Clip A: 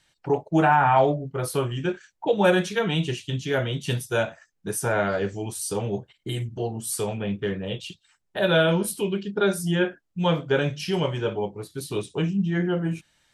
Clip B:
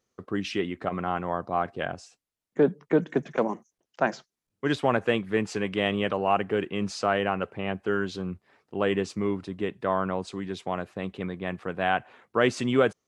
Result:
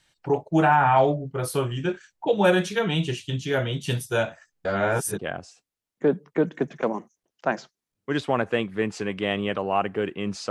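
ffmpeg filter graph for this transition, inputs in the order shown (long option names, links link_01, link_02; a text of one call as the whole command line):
ffmpeg -i cue0.wav -i cue1.wav -filter_complex "[0:a]apad=whole_dur=10.5,atrim=end=10.5,asplit=2[link_01][link_02];[link_01]atrim=end=4.652[link_03];[link_02]atrim=start=4.648:end=5.192,asetpts=PTS-STARTPTS,areverse[link_04];[1:a]atrim=start=1.738:end=7.05[link_05];[link_03][link_04]acrossfade=duration=0.004:curve1=hsin:curve2=hsin[link_06];[link_06][link_05]acrossfade=duration=0.004:curve1=hsin:curve2=hsin" out.wav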